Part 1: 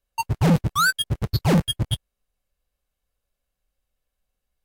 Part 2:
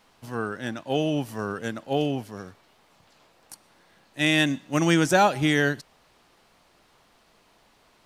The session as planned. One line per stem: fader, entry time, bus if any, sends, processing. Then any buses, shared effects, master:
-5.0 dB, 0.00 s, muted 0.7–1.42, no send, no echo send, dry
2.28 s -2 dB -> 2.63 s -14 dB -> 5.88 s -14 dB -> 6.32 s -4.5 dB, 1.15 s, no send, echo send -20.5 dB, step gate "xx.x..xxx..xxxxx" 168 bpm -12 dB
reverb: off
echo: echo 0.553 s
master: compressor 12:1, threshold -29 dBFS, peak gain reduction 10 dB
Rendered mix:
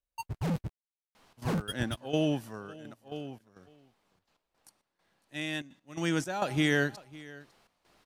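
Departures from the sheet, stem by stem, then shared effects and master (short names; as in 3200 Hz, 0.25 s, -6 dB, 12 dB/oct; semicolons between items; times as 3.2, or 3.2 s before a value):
stem 1 -5.0 dB -> -13.5 dB; master: missing compressor 12:1, threshold -29 dBFS, peak gain reduction 10 dB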